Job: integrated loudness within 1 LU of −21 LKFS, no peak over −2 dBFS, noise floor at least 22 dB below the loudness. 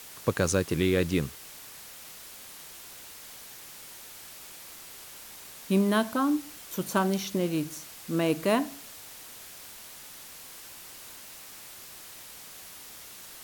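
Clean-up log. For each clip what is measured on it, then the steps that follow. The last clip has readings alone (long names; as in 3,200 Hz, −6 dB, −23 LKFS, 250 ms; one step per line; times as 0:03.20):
background noise floor −46 dBFS; target noise floor −50 dBFS; integrated loudness −28.0 LKFS; sample peak −11.5 dBFS; target loudness −21.0 LKFS
→ noise reduction from a noise print 6 dB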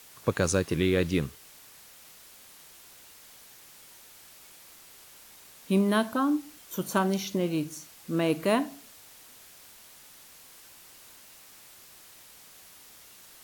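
background noise floor −52 dBFS; integrated loudness −28.0 LKFS; sample peak −11.5 dBFS; target loudness −21.0 LKFS
→ level +7 dB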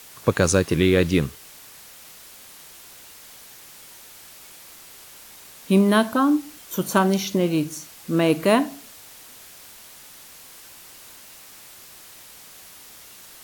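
integrated loudness −21.0 LKFS; sample peak −4.5 dBFS; background noise floor −45 dBFS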